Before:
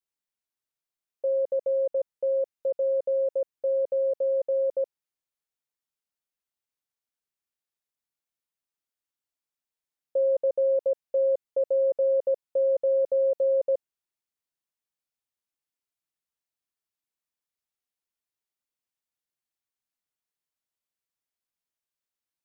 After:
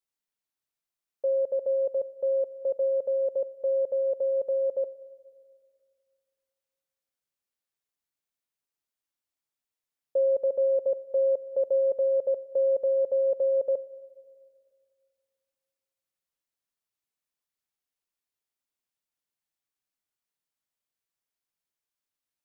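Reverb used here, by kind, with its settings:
rectangular room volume 3,800 cubic metres, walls mixed, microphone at 0.31 metres

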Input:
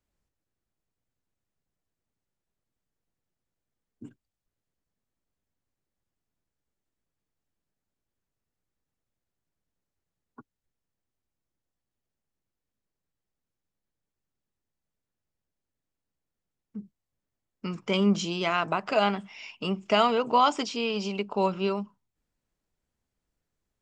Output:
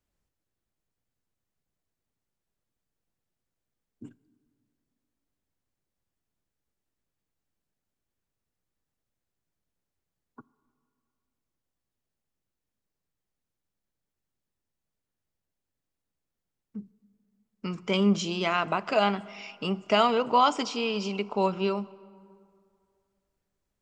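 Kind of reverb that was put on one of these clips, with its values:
dense smooth reverb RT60 2.4 s, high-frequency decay 0.55×, DRR 19 dB

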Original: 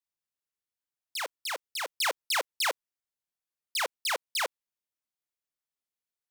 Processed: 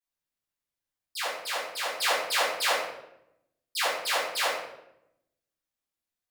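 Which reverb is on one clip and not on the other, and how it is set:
rectangular room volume 230 cubic metres, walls mixed, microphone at 3.8 metres
level −7.5 dB

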